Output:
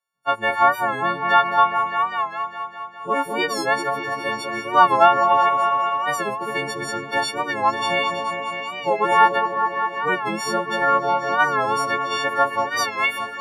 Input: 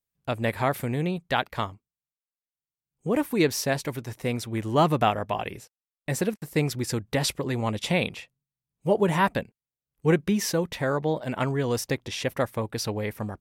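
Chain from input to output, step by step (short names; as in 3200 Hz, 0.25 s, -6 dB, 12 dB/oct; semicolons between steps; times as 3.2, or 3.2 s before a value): frequency quantiser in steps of 4 st; in parallel at +2.5 dB: limiter -14.5 dBFS, peak gain reduction 10.5 dB; on the sum: band-pass sweep 1100 Hz -> 3200 Hz, 12.56–13.16; repeats that get brighter 0.203 s, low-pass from 750 Hz, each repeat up 1 oct, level -3 dB; record warp 45 rpm, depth 100 cents; gain +6 dB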